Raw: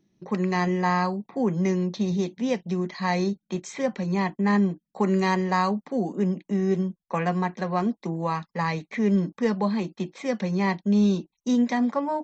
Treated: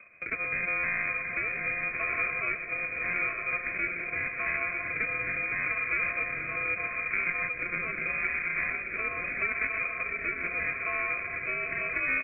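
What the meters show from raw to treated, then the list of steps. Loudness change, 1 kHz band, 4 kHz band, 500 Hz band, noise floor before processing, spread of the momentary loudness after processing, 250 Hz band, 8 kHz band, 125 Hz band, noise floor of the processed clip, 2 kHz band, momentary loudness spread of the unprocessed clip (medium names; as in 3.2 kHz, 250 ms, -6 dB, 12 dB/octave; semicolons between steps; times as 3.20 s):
-3.5 dB, -10.5 dB, under -20 dB, -14.0 dB, -84 dBFS, 3 LU, -24.5 dB, no reading, -20.0 dB, -38 dBFS, +8.5 dB, 7 LU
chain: comb filter that takes the minimum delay 0.42 ms; bass shelf 370 Hz -8 dB; on a send: echo that smears into a reverb 749 ms, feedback 42%, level -5.5 dB; on the sum: peak limiter -20.5 dBFS, peak gain reduction 6 dB; sample-and-hold 23×; elliptic high-pass 290 Hz, stop band 40 dB; in parallel at -11.5 dB: saturation -31 dBFS, distortion -11 dB; on the sum: delay 124 ms -12 dB; frequency inversion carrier 2.8 kHz; rotary cabinet horn 0.8 Hz; three bands compressed up and down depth 70%; trim +4.5 dB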